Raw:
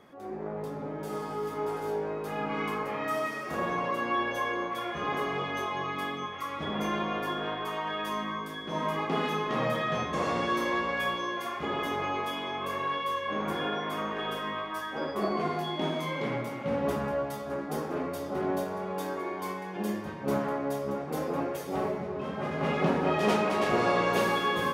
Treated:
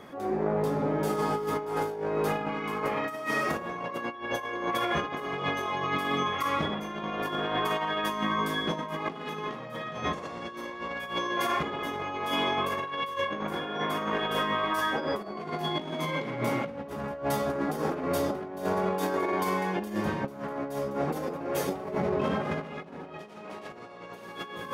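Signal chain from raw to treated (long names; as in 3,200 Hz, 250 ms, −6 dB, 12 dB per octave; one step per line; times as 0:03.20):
compressor whose output falls as the input rises −35 dBFS, ratio −0.5
level +4.5 dB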